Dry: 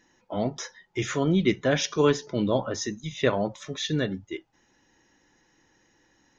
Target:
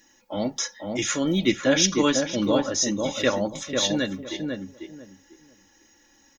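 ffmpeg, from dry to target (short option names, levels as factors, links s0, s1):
-filter_complex "[0:a]aemphasis=mode=production:type=75fm,aecho=1:1:3.6:0.58,asplit=2[s0][s1];[s1]adelay=496,lowpass=f=1300:p=1,volume=0.668,asplit=2[s2][s3];[s3]adelay=496,lowpass=f=1300:p=1,volume=0.22,asplit=2[s4][s5];[s5]adelay=496,lowpass=f=1300:p=1,volume=0.22[s6];[s2][s4][s6]amix=inputs=3:normalize=0[s7];[s0][s7]amix=inputs=2:normalize=0"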